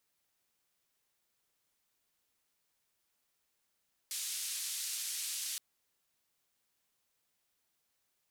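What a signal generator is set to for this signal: noise band 3300–11000 Hz, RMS -39 dBFS 1.47 s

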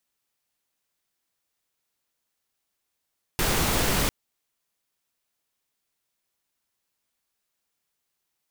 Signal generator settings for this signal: noise pink, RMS -23.5 dBFS 0.70 s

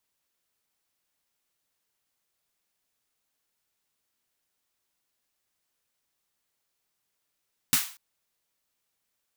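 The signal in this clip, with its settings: snare drum length 0.24 s, tones 160 Hz, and 250 Hz, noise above 1000 Hz, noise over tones 9 dB, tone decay 0.10 s, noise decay 0.39 s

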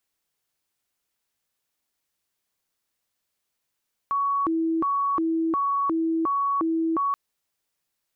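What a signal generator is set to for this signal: siren hi-lo 326–1120 Hz 1.4/s sine -21 dBFS 3.03 s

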